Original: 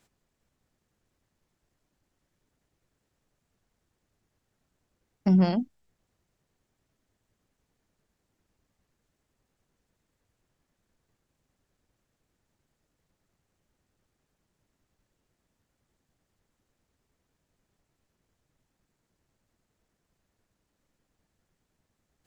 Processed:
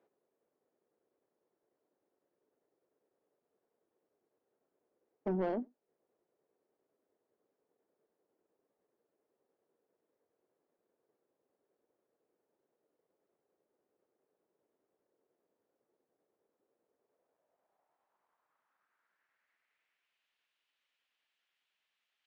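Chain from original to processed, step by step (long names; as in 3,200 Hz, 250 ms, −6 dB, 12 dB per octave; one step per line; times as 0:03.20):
band-pass filter sweep 430 Hz → 3,000 Hz, 0:16.84–0:20.28
mid-hump overdrive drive 21 dB, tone 2,300 Hz, clips at −18.5 dBFS
slap from a distant wall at 16 metres, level −30 dB
level −5.5 dB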